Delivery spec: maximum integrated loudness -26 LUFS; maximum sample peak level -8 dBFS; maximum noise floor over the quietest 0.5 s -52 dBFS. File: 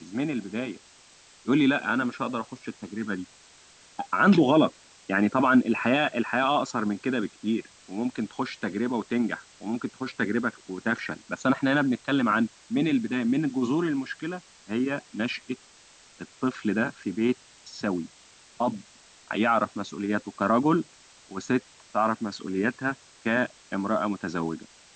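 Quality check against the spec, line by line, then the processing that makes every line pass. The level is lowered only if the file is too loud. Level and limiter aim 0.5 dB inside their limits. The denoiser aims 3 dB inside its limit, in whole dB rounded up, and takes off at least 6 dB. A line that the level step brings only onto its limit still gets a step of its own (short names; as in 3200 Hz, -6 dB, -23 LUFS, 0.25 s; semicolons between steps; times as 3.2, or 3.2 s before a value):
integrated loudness -27.0 LUFS: OK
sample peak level -9.5 dBFS: OK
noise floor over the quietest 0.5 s -54 dBFS: OK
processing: none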